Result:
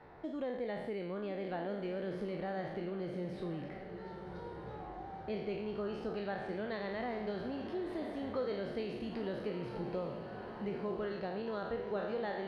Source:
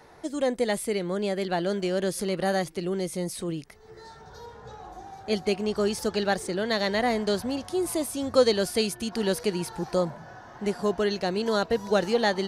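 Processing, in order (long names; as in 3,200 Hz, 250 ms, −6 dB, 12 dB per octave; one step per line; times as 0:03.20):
peak hold with a decay on every bin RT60 0.79 s
high-shelf EQ 8,600 Hz −5.5 dB
downward compressor 2.5 to 1, threshold −35 dBFS, peak gain reduction 14 dB
high-frequency loss of the air 380 metres
on a send: feedback delay with all-pass diffusion 1,141 ms, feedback 44%, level −9.5 dB
on the sum: level −4 dB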